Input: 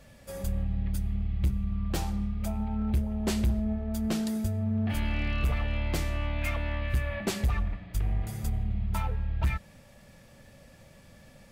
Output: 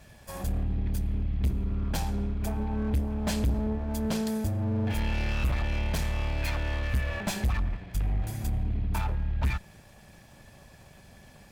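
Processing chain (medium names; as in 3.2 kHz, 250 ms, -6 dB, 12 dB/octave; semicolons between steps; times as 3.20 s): comb filter that takes the minimum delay 1.2 ms; Chebyshev shaper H 5 -23 dB, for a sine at -17 dBFS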